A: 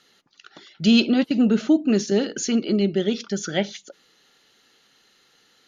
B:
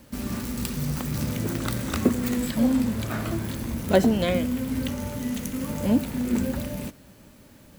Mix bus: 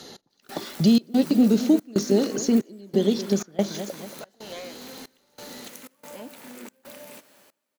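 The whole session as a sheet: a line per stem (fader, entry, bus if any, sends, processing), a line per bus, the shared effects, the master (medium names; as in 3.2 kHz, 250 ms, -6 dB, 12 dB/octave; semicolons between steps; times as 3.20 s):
+0.5 dB, 0.00 s, no send, echo send -13.5 dB, high-order bell 1.9 kHz -11 dB; three bands compressed up and down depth 70%
+0.5 dB, 0.30 s, no send, no echo send, high-pass 520 Hz 12 dB/octave; overload inside the chain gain 21 dB; compression 2.5:1, threshold -42 dBFS, peak gain reduction 12.5 dB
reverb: none
echo: feedback delay 228 ms, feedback 48%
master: trance gate "x..xxx.xxxx.xxx" 92 bpm -24 dB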